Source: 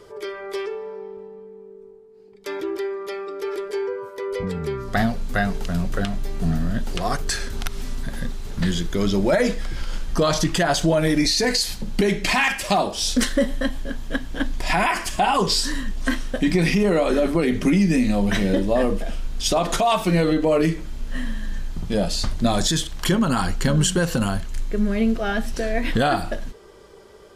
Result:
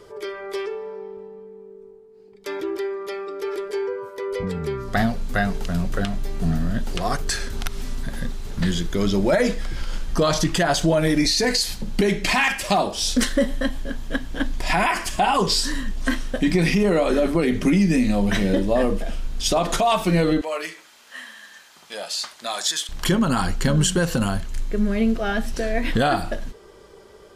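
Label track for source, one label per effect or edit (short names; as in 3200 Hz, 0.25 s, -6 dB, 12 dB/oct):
20.410000	22.890000	HPF 940 Hz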